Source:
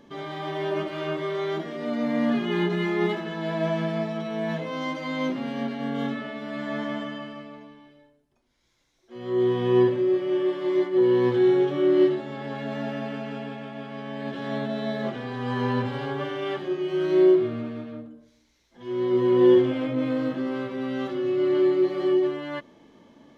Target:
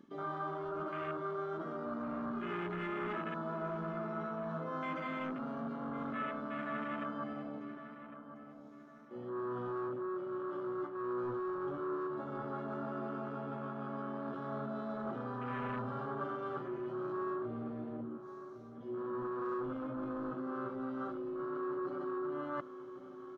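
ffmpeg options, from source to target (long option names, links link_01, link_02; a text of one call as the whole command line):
ffmpeg -i in.wav -filter_complex "[0:a]highshelf=frequency=2800:gain=5,asoftclip=type=tanh:threshold=-25.5dB,afwtdn=0.0178,areverse,acompressor=threshold=-43dB:ratio=4,areverse,equalizer=frequency=1300:width_type=o:width=0.49:gain=13.5,asplit=2[link_01][link_02];[link_02]adelay=1105,lowpass=frequency=1900:poles=1,volume=-11dB,asplit=2[link_03][link_04];[link_04]adelay=1105,lowpass=frequency=1900:poles=1,volume=0.46,asplit=2[link_05][link_06];[link_06]adelay=1105,lowpass=frequency=1900:poles=1,volume=0.46,asplit=2[link_07][link_08];[link_08]adelay=1105,lowpass=frequency=1900:poles=1,volume=0.46,asplit=2[link_09][link_10];[link_10]adelay=1105,lowpass=frequency=1900:poles=1,volume=0.46[link_11];[link_03][link_05][link_07][link_09][link_11]amix=inputs=5:normalize=0[link_12];[link_01][link_12]amix=inputs=2:normalize=0,volume=1.5dB" out.wav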